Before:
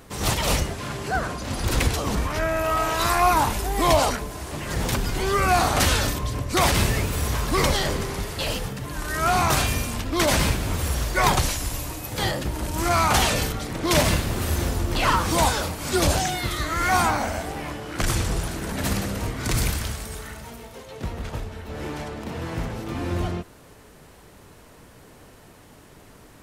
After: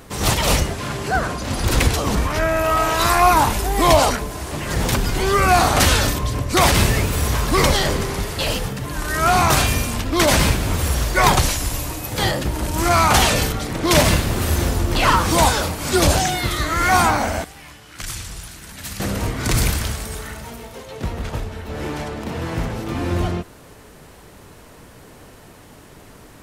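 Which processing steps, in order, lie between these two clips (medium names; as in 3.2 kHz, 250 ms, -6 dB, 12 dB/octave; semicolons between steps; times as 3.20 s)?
17.44–19.00 s: amplifier tone stack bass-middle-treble 5-5-5; trim +5 dB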